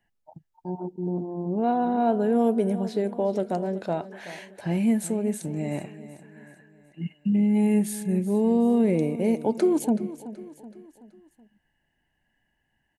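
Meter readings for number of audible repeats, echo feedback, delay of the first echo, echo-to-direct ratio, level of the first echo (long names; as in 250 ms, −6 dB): 4, 48%, 377 ms, −14.0 dB, −15.0 dB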